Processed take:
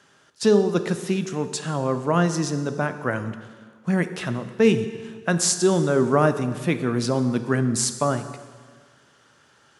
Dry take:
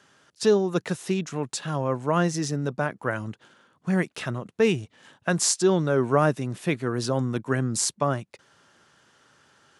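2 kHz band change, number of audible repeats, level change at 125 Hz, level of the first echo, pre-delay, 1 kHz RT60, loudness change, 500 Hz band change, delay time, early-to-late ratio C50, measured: +2.0 dB, no echo, +2.5 dB, no echo, 8 ms, 1.6 s, +2.5 dB, +2.5 dB, no echo, 11.0 dB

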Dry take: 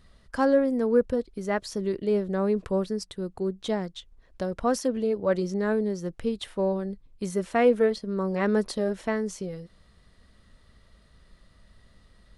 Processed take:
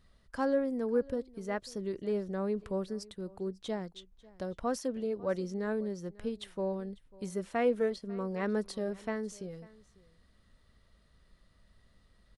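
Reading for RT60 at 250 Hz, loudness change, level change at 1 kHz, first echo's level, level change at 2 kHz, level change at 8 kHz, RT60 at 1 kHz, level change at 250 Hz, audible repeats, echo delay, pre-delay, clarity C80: no reverb, -8.0 dB, -8.0 dB, -22.5 dB, -8.0 dB, -8.0 dB, no reverb, -8.0 dB, 1, 546 ms, no reverb, no reverb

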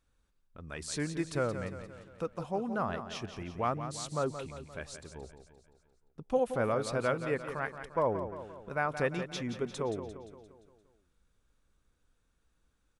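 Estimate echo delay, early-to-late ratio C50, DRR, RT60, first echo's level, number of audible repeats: 174 ms, no reverb, no reverb, no reverb, -10.0 dB, 5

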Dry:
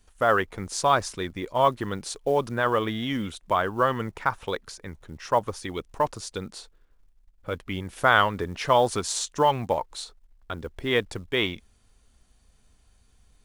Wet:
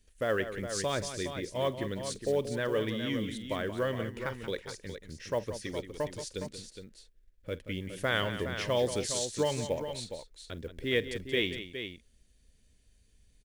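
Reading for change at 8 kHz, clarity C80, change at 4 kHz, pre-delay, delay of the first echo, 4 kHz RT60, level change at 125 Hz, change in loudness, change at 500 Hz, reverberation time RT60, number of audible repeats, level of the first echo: -4.0 dB, no reverb, -4.0 dB, no reverb, 47 ms, no reverb, -4.0 dB, -7.5 dB, -5.5 dB, no reverb, 3, -19.0 dB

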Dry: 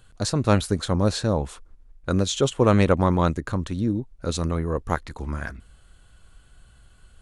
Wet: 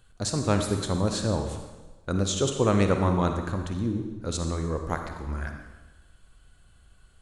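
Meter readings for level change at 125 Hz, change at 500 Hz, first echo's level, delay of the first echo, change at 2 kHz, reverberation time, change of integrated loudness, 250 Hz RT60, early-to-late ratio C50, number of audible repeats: -3.5 dB, -4.0 dB, no echo, no echo, -4.0 dB, 1.2 s, -3.5 dB, 1.1 s, 5.5 dB, no echo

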